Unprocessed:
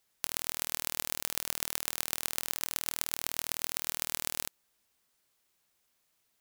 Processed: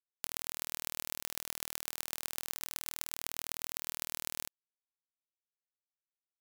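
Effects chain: companded quantiser 4-bit; gain -6.5 dB

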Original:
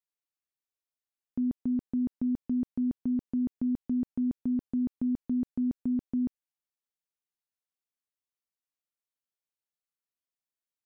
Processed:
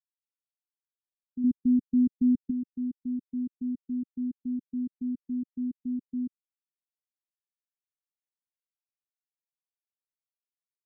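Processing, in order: 1.44–2.51 low shelf 330 Hz +9.5 dB; spectral expander 1.5:1

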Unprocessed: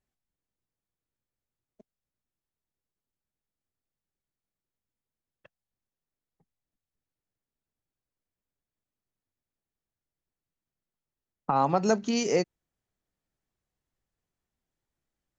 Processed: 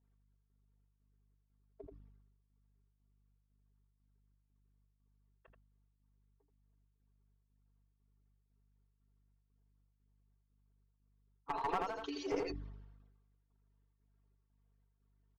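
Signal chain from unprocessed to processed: median-filter separation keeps percussive; LPF 4700 Hz 24 dB/oct; tilt -2.5 dB/oct; comb 4.4 ms, depth 81%; compressor 6:1, threshold -33 dBFS, peak gain reduction 15 dB; rippled Chebyshev high-pass 280 Hz, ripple 9 dB; hum 50 Hz, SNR 26 dB; one-sided clip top -41 dBFS; chopper 2 Hz, depth 65%, duty 70%; on a send: echo 82 ms -8 dB; on the sum: sustainer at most 45 dB/s; gain +5.5 dB

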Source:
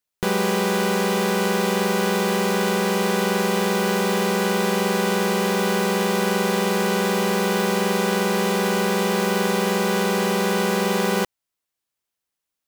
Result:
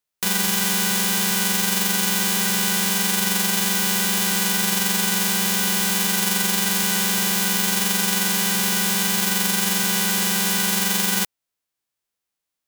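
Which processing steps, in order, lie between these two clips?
spectral whitening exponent 0.1

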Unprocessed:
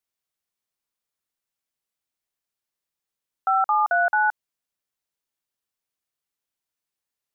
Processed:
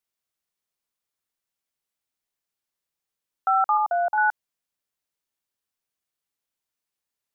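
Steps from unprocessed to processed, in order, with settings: 3.77–4.18 fixed phaser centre 720 Hz, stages 4

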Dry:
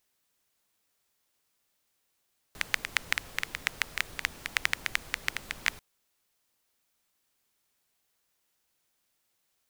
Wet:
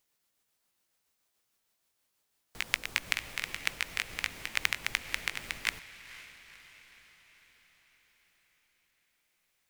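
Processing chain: gliding pitch shift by +2.5 st ending unshifted; diffused feedback echo 0.499 s, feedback 56%, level -15 dB

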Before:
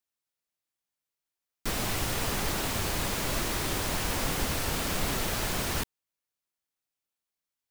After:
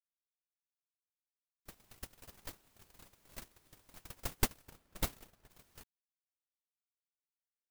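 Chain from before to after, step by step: gate -23 dBFS, range -59 dB; high shelf 8700 Hz +7 dB; 4.39–5.5 mismatched tape noise reduction decoder only; gain +17 dB

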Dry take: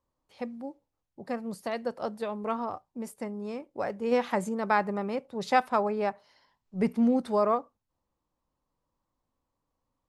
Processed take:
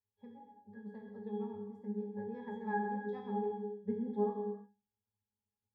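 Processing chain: octave resonator G#, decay 0.54 s; granular stretch 0.57×, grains 0.159 s; non-linear reverb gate 0.37 s falling, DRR 1 dB; gain +5.5 dB

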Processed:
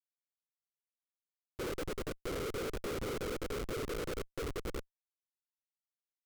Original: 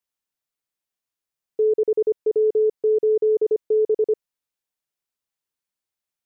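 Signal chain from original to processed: HPF 110 Hz 12 dB/oct; band shelf 500 Hz -9.5 dB 1.1 oct; limiter -32.5 dBFS, peak gain reduction 9 dB; whisperiser; feedback echo 0.658 s, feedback 25%, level -4.5 dB; Schmitt trigger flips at -40 dBFS; gain +4.5 dB

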